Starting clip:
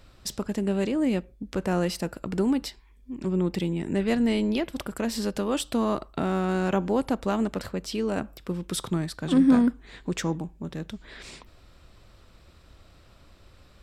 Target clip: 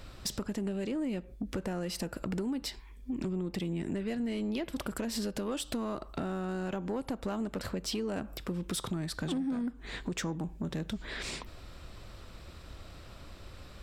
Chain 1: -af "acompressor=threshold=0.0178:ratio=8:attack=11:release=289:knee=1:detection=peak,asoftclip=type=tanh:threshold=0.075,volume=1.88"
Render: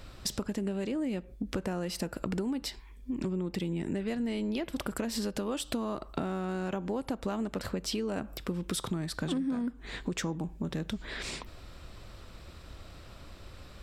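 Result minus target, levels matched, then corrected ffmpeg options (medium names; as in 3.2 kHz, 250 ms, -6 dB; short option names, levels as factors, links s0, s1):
saturation: distortion -11 dB
-af "acompressor=threshold=0.0178:ratio=8:attack=11:release=289:knee=1:detection=peak,asoftclip=type=tanh:threshold=0.0282,volume=1.88"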